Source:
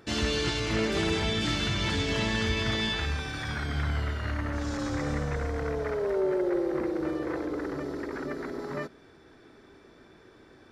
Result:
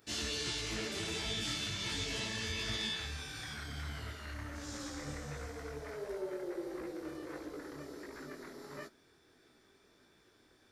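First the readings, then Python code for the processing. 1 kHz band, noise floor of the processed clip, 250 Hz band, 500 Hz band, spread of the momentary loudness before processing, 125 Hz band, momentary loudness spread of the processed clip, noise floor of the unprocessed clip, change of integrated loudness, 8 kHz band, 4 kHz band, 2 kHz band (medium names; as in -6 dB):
-12.0 dB, -67 dBFS, -13.5 dB, -13.5 dB, 8 LU, -13.5 dB, 12 LU, -55 dBFS, -10.0 dB, -1.0 dB, -5.5 dB, -9.5 dB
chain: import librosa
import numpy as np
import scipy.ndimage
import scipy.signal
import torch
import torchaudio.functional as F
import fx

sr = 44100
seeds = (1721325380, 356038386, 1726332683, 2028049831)

y = scipy.signal.lfilter([1.0, -0.8], [1.0], x)
y = fx.detune_double(y, sr, cents=51)
y = F.gain(torch.from_numpy(y), 4.0).numpy()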